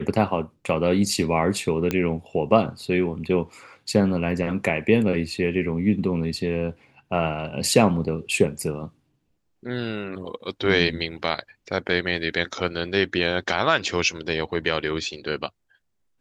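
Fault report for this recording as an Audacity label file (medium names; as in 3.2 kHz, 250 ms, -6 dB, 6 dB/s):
1.910000	1.910000	pop -10 dBFS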